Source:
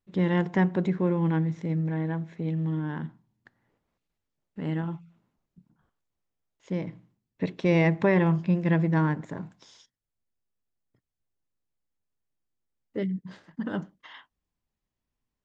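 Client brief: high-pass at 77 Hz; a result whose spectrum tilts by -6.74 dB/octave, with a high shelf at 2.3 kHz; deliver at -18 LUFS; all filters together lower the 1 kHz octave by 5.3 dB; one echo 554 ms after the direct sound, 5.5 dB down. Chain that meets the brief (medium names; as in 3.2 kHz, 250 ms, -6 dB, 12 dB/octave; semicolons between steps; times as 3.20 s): high-pass 77 Hz; peaking EQ 1 kHz -7.5 dB; treble shelf 2.3 kHz +5 dB; delay 554 ms -5.5 dB; trim +9.5 dB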